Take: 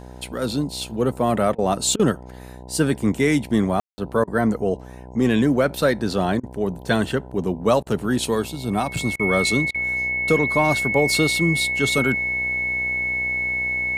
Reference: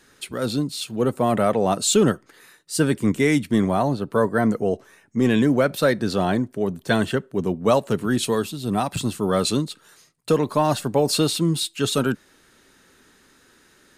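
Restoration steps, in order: de-hum 62.5 Hz, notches 16; notch 2200 Hz, Q 30; room tone fill 3.8–3.98; interpolate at 1.55/1.96/4.24/6.4/7.83/9.16/9.71, 33 ms

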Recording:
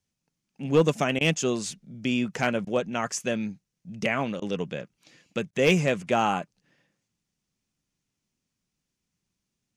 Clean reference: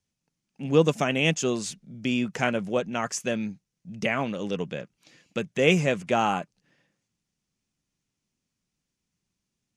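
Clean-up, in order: clip repair -12 dBFS; interpolate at 1.19/2.65/4.4/5.51, 18 ms

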